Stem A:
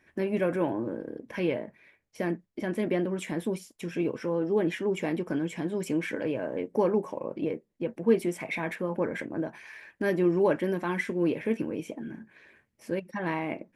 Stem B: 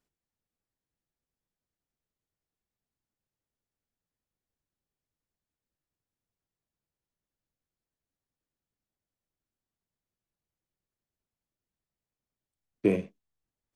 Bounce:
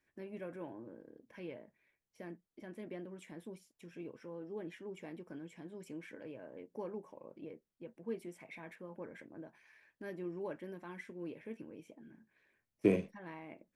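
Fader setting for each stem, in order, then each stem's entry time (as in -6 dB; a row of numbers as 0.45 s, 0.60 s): -18.0 dB, -4.0 dB; 0.00 s, 0.00 s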